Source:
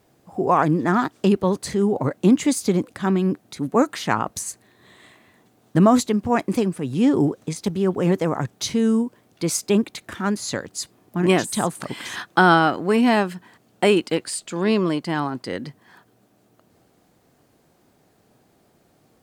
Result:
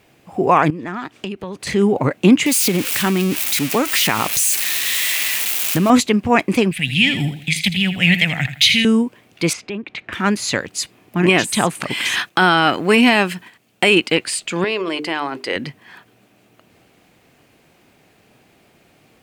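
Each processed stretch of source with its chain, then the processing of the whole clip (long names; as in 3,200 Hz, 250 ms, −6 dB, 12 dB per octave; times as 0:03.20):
0:00.70–0:01.67: downward compressor 4 to 1, threshold −32 dBFS + high-shelf EQ 11,000 Hz −5.5 dB
0:02.46–0:05.90: spike at every zero crossing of −16.5 dBFS + downward compressor 4 to 1, threshold −18 dBFS
0:06.71–0:08.85: drawn EQ curve 190 Hz 0 dB, 420 Hz −23 dB, 720 Hz −6 dB, 1,100 Hz −20 dB, 1,900 Hz +9 dB, 3,500 Hz +12 dB, 5,800 Hz −1 dB, 13,000 Hz +8 dB + repeating echo 81 ms, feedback 31%, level −11 dB
0:09.53–0:10.13: low-pass filter 2,800 Hz + downward compressor 2.5 to 1, threshold −36 dBFS
0:11.90–0:13.95: noise gate −50 dBFS, range −8 dB + high-shelf EQ 5,200 Hz +7.5 dB
0:14.64–0:15.56: mains-hum notches 50/100/150/200/250/300/350/400/450 Hz + downward compressor 10 to 1, threshold −22 dBFS + low shelf with overshoot 270 Hz −10 dB, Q 1.5
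whole clip: parametric band 2,500 Hz +12 dB 0.93 octaves; boost into a limiter +5.5 dB; level −1 dB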